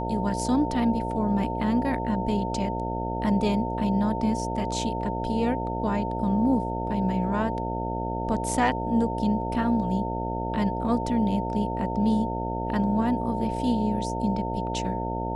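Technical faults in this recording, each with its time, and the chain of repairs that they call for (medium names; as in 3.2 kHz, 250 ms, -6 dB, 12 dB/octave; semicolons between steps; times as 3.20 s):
buzz 60 Hz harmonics 12 -31 dBFS
whine 900 Hz -31 dBFS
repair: de-hum 60 Hz, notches 12; band-stop 900 Hz, Q 30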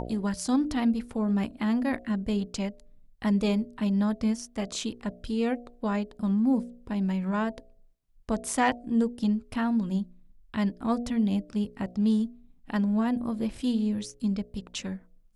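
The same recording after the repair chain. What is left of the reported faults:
nothing left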